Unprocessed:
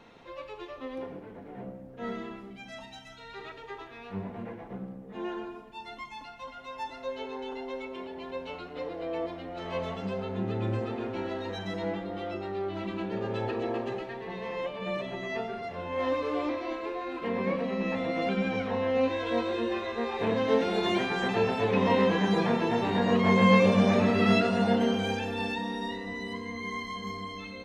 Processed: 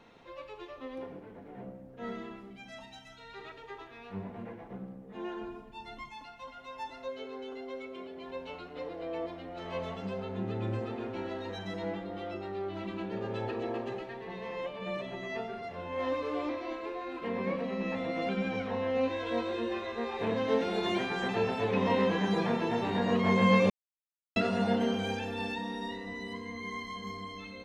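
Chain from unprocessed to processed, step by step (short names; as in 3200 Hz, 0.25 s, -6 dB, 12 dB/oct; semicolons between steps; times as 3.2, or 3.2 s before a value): 5.41–6.1 low shelf 190 Hz +10 dB; 7.08–8.26 notch comb 900 Hz; 23.7–24.36 mute; gain -3.5 dB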